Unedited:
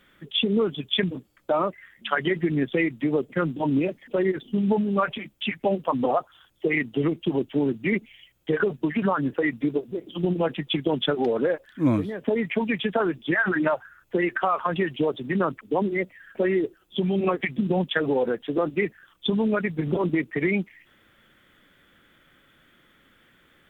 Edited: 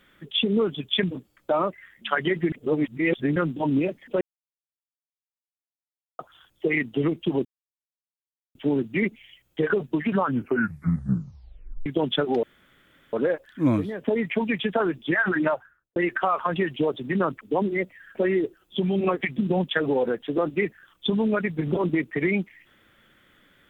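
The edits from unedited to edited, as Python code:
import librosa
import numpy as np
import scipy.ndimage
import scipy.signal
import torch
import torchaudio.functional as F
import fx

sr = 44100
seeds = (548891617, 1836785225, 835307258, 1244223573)

y = fx.studio_fade_out(x, sr, start_s=13.63, length_s=0.53)
y = fx.edit(y, sr, fx.reverse_span(start_s=2.52, length_s=0.84),
    fx.silence(start_s=4.21, length_s=1.98),
    fx.insert_silence(at_s=7.45, length_s=1.1),
    fx.tape_stop(start_s=9.11, length_s=1.65),
    fx.insert_room_tone(at_s=11.33, length_s=0.7), tone=tone)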